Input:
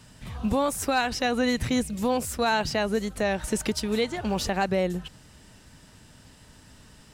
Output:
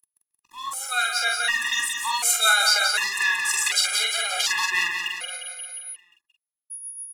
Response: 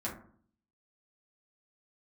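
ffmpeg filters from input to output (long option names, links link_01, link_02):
-filter_complex "[0:a]anlmdn=0.631,highpass=frequency=1200:width=0.5412,highpass=frequency=1200:width=1.3066,highshelf=frequency=9200:gain=-2.5,dynaudnorm=framelen=390:gausssize=9:maxgain=15dB,aeval=exprs='sgn(val(0))*max(abs(val(0))-0.0075,0)':channel_layout=same,aeval=exprs='val(0)+0.0178*sin(2*PI*11000*n/s)':channel_layout=same,asetrate=41625,aresample=44100,atempo=1.05946,alimiter=limit=-12dB:level=0:latency=1:release=71,acrossover=split=2100[link_01][link_02];[link_01]aeval=exprs='val(0)*(1-0.5/2+0.5/2*cos(2*PI*7.2*n/s))':channel_layout=same[link_03];[link_02]aeval=exprs='val(0)*(1-0.5/2-0.5/2*cos(2*PI*7.2*n/s))':channel_layout=same[link_04];[link_03][link_04]amix=inputs=2:normalize=0,asplit=2[link_05][link_06];[link_06]adelay=45,volume=-3.5dB[link_07];[link_05][link_07]amix=inputs=2:normalize=0,asplit=2[link_08][link_09];[link_09]aecho=0:1:177|354|531|708|885|1062|1239:0.501|0.286|0.163|0.0928|0.0529|0.0302|0.0172[link_10];[link_08][link_10]amix=inputs=2:normalize=0,afftfilt=real='re*gt(sin(2*PI*0.67*pts/sr)*(1-2*mod(floor(b*sr/1024/410),2)),0)':imag='im*gt(sin(2*PI*0.67*pts/sr)*(1-2*mod(floor(b*sr/1024/410),2)),0)':win_size=1024:overlap=0.75,volume=6dB"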